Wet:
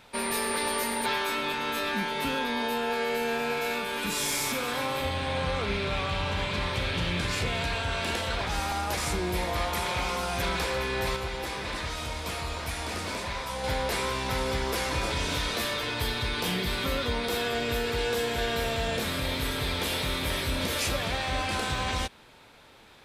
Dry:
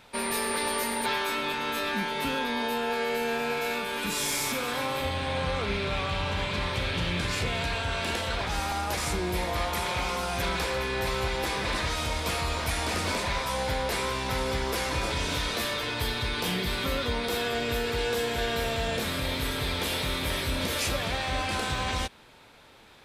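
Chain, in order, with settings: 11.16–13.64 s: flange 1.8 Hz, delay 9.5 ms, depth 8.4 ms, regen -74%

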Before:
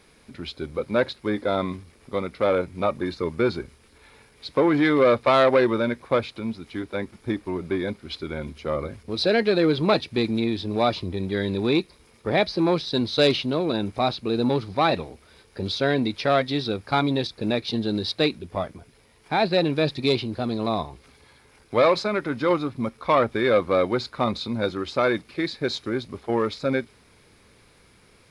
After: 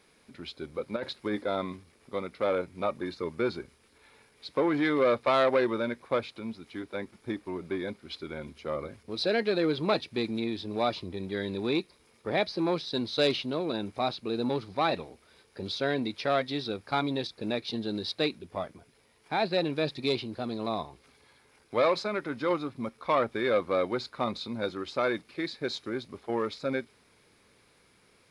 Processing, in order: bass shelf 100 Hz -11 dB; 0.96–1.43 s: compressor with a negative ratio -25 dBFS, ratio -1; trim -6 dB

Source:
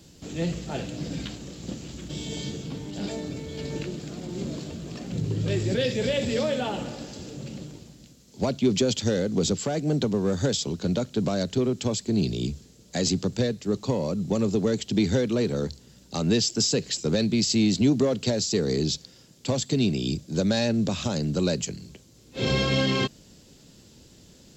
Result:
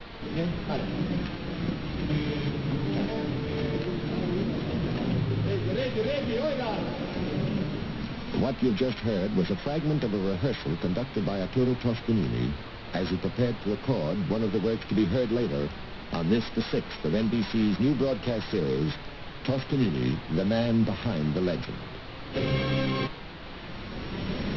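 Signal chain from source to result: sorted samples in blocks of 8 samples; recorder AGC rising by 20 dB/s; added noise pink -36 dBFS; steep low-pass 4.4 kHz 48 dB/octave; expander -35 dBFS; flange 0.12 Hz, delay 4.2 ms, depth 4.8 ms, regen +71%; trim +1.5 dB

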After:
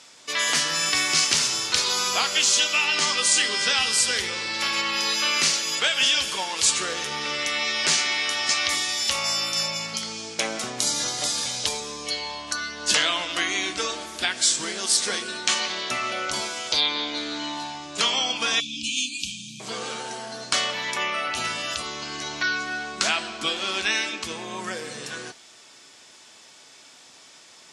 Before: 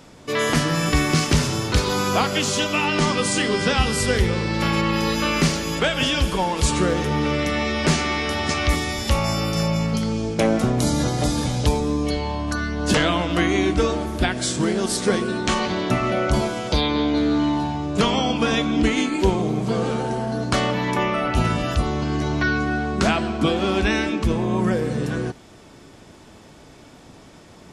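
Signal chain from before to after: frequency weighting ITU-R 468; flange 0.11 Hz, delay 7.8 ms, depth 1.2 ms, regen -76%; 18.60–19.60 s: brick-wall FIR band-stop 290–2300 Hz; trim -1 dB

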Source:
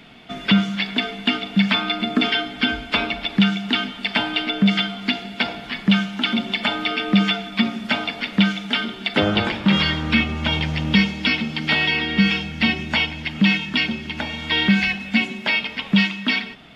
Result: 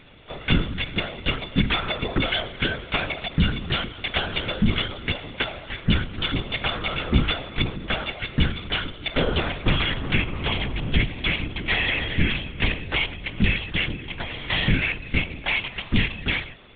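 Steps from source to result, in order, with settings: LPC vocoder at 8 kHz whisper; trim -3.5 dB

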